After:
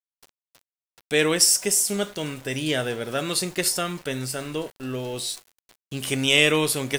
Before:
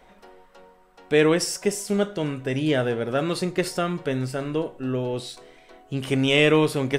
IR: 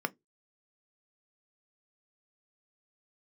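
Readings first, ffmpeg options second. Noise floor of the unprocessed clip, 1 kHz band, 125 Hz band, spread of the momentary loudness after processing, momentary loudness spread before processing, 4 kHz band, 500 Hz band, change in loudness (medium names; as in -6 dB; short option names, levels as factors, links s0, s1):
-54 dBFS, -2.0 dB, -4.5 dB, 15 LU, 11 LU, +5.5 dB, -4.0 dB, +1.0 dB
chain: -af "crystalizer=i=5.5:c=0,aeval=exprs='val(0)*gte(abs(val(0)),0.015)':c=same,volume=0.596"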